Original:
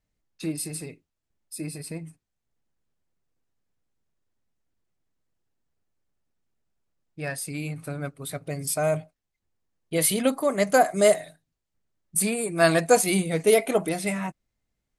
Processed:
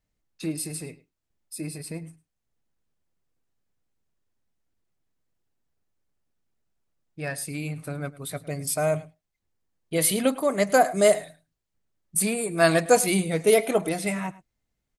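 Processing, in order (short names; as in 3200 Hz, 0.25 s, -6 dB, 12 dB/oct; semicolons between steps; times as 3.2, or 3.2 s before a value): echo 0.105 s -19.5 dB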